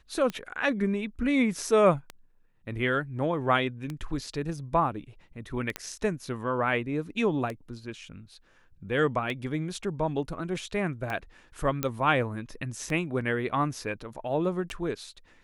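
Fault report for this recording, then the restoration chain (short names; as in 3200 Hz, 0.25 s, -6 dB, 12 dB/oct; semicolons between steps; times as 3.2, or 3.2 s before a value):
tick 33 1/3 rpm -20 dBFS
5.76 pop -14 dBFS
11.83 pop -11 dBFS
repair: de-click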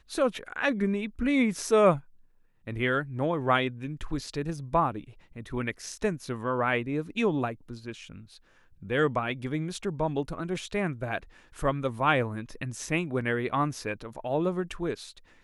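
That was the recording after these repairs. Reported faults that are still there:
11.83 pop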